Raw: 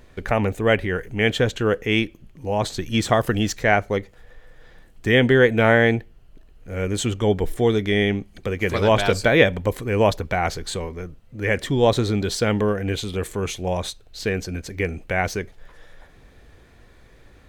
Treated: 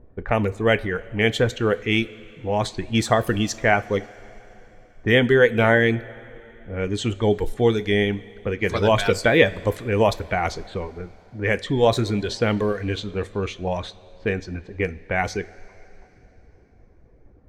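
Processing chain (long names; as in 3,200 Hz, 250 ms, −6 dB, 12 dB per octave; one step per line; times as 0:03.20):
low-pass that shuts in the quiet parts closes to 570 Hz, open at −17 dBFS
reverb reduction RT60 0.73 s
coupled-rooms reverb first 0.25 s, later 3.6 s, from −18 dB, DRR 12 dB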